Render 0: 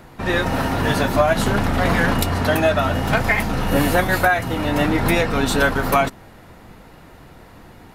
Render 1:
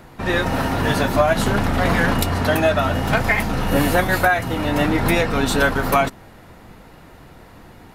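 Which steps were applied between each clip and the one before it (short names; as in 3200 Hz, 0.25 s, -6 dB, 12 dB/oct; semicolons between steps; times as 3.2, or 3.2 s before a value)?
nothing audible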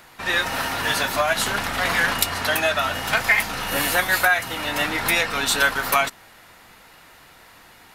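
tilt shelf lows -10 dB, about 740 Hz; gain -5 dB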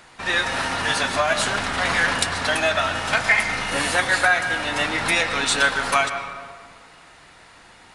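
on a send at -8 dB: reverb RT60 1.8 s, pre-delay 94 ms; on the sum: downsampling 22050 Hz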